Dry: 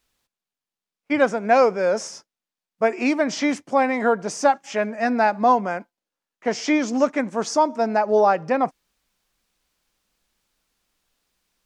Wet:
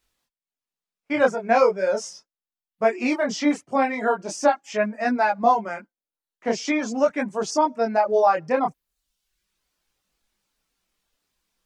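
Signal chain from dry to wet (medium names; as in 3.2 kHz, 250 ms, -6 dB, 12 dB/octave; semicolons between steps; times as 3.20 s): reverb removal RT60 0.79 s; chorus voices 2, 0.4 Hz, delay 23 ms, depth 3.9 ms; trim +2 dB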